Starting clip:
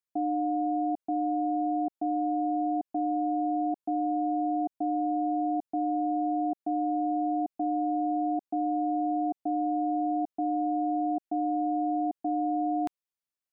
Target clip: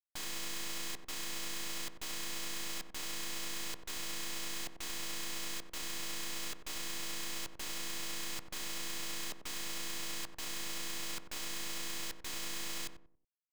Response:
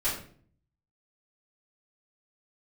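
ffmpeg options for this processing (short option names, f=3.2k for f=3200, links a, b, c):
-filter_complex "[0:a]aeval=exprs='(mod(66.8*val(0)+1,2)-1)/66.8':c=same,acrusher=bits=6:dc=4:mix=0:aa=0.000001,asplit=2[a][b];[b]adelay=93,lowpass=f=830:p=1,volume=-6dB,asplit=2[c][d];[d]adelay=93,lowpass=f=830:p=1,volume=0.36,asplit=2[e][f];[f]adelay=93,lowpass=f=830:p=1,volume=0.36,asplit=2[g][h];[h]adelay=93,lowpass=f=830:p=1,volume=0.36[i];[a][c][e][g][i]amix=inputs=5:normalize=0,volume=4dB"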